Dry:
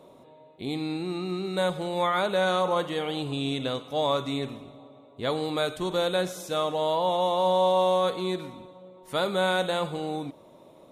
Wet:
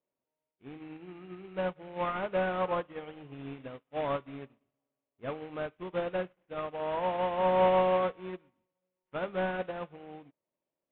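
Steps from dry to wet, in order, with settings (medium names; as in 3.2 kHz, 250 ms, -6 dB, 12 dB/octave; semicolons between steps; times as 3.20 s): CVSD coder 16 kbps; de-hum 52.97 Hz, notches 3; upward expansion 2.5:1, over -47 dBFS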